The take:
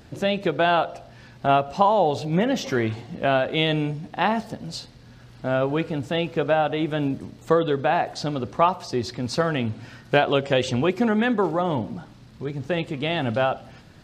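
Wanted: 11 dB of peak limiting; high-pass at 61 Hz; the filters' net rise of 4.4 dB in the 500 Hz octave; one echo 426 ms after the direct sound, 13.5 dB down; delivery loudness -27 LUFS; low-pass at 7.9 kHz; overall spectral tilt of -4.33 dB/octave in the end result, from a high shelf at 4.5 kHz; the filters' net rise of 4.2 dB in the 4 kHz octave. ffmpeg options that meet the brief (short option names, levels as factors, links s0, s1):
-af "highpass=61,lowpass=7900,equalizer=f=500:t=o:g=5.5,equalizer=f=4000:t=o:g=7,highshelf=f=4500:g=-3,alimiter=limit=0.224:level=0:latency=1,aecho=1:1:426:0.211,volume=0.75"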